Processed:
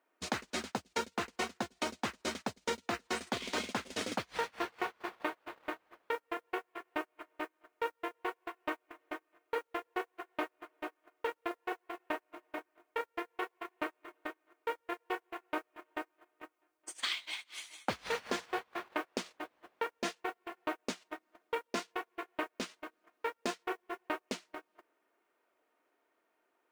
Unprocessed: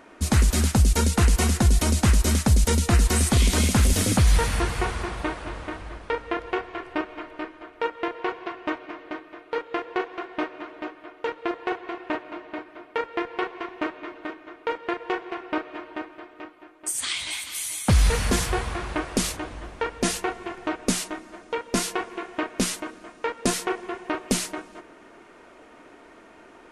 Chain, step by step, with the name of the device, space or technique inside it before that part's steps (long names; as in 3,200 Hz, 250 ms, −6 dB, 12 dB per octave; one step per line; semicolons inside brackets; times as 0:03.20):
baby monitor (band-pass filter 390–4,400 Hz; downward compressor 6 to 1, threshold −38 dBFS, peak gain reduction 15.5 dB; white noise bed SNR 22 dB; noise gate −39 dBFS, range −34 dB)
level +7 dB